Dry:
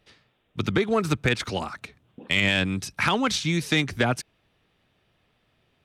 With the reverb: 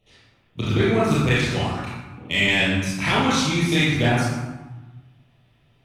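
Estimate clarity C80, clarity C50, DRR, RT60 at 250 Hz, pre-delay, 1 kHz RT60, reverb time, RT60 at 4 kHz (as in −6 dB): 1.5 dB, −2.0 dB, −9.0 dB, 1.6 s, 25 ms, 1.2 s, 1.2 s, 0.75 s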